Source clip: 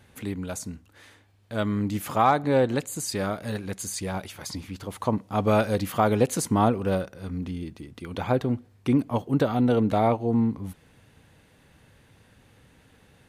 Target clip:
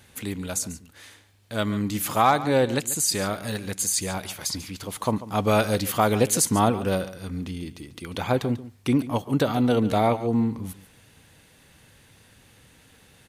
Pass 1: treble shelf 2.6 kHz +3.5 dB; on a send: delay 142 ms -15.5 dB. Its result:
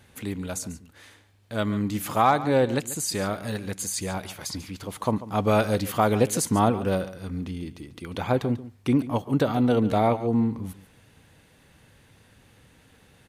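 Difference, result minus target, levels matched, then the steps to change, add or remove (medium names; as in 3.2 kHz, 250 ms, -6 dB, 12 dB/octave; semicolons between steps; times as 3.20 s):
4 kHz band -3.5 dB
change: treble shelf 2.6 kHz +10 dB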